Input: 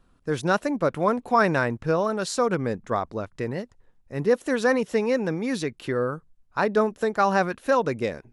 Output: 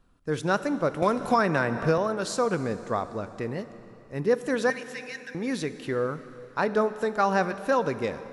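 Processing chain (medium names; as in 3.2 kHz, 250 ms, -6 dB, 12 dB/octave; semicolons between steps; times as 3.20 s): 4.70–5.35 s: Chebyshev high-pass 1.5 kHz, order 8; plate-style reverb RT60 3.2 s, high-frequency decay 0.9×, DRR 12 dB; 1.02–1.98 s: three bands compressed up and down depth 100%; trim -2.5 dB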